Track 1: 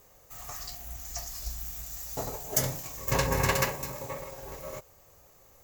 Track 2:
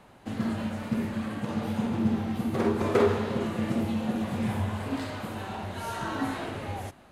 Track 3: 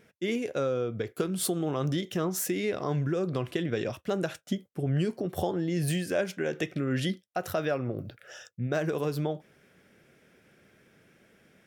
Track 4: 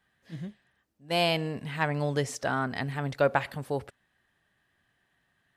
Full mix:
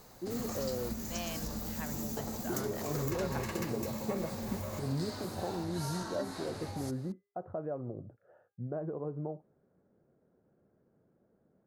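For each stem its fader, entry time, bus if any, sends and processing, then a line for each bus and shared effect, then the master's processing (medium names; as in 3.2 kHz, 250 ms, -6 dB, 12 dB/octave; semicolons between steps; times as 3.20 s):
-1.0 dB, 0.00 s, no send, compression 6:1, threshold -37 dBFS, peak gain reduction 15.5 dB
-4.5 dB, 0.00 s, no send, compression 5:1, threshold -34 dBFS, peak gain reduction 14.5 dB; resonant high shelf 3.7 kHz +7.5 dB, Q 3
-8.0 dB, 0.00 s, muted 0.93–2.46 s, no send, low-pass 1 kHz 24 dB/octave; de-hum 403.6 Hz, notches 36
-16.5 dB, 0.00 s, no send, none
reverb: none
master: none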